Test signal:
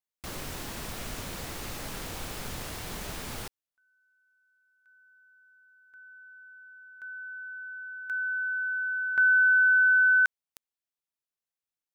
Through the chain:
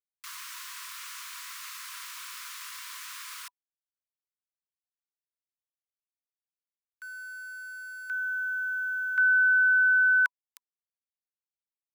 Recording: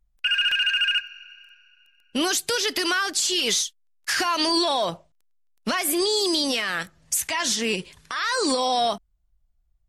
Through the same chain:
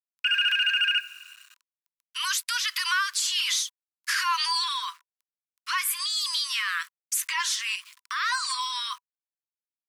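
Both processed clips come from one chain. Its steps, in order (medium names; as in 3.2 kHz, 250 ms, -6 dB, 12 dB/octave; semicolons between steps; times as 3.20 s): dynamic bell 6.5 kHz, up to -4 dB, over -39 dBFS, Q 0.96; small samples zeroed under -46 dBFS; Chebyshev high-pass 980 Hz, order 10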